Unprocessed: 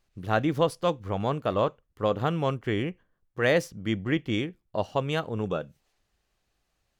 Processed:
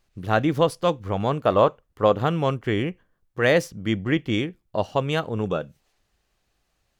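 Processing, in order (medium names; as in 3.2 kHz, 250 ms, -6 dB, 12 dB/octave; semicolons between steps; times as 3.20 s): 1.44–2.12 s: peaking EQ 810 Hz +4.5 dB 2.2 oct; trim +4 dB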